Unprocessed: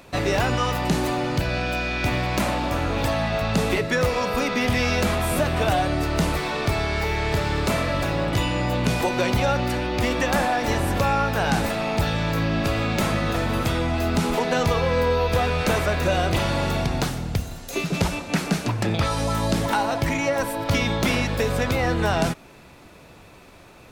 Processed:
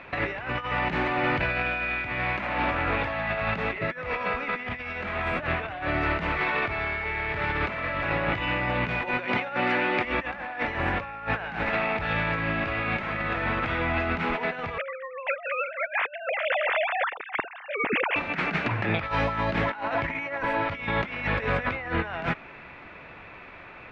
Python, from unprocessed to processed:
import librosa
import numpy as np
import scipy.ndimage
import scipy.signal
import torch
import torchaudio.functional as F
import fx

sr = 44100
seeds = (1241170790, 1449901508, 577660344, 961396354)

y = fx.cheby1_bandpass(x, sr, low_hz=220.0, high_hz=9300.0, order=2, at=(9.26, 10.05))
y = fx.sine_speech(y, sr, at=(14.78, 18.16))
y = scipy.signal.sosfilt(scipy.signal.cheby1(3, 1.0, 2200.0, 'lowpass', fs=sr, output='sos'), y)
y = fx.tilt_shelf(y, sr, db=-8.5, hz=970.0)
y = fx.over_compress(y, sr, threshold_db=-29.0, ratio=-0.5)
y = F.gain(torch.from_numpy(y), 1.5).numpy()